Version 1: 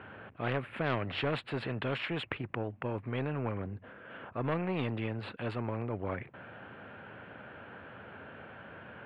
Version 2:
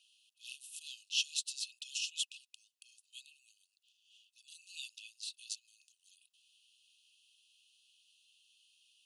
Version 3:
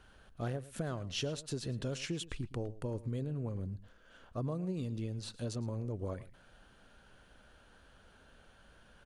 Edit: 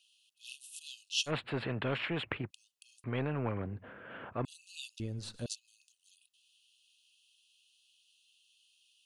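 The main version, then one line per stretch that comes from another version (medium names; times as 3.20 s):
2
1.29–2.48 s: from 1, crossfade 0.06 s
3.04–4.45 s: from 1
5.00–5.46 s: from 3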